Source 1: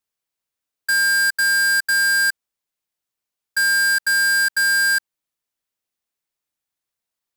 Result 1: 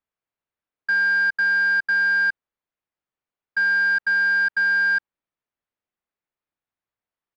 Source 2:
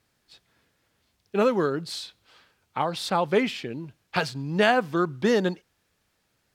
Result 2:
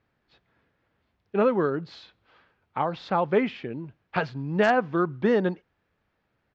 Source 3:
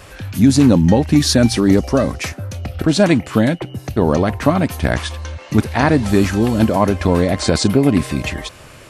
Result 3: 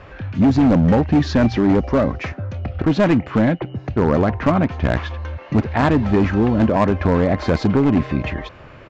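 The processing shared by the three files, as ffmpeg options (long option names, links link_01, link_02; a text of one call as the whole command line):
ffmpeg -i in.wav -af "lowpass=2100,aresample=16000,asoftclip=type=hard:threshold=-10dB,aresample=44100" out.wav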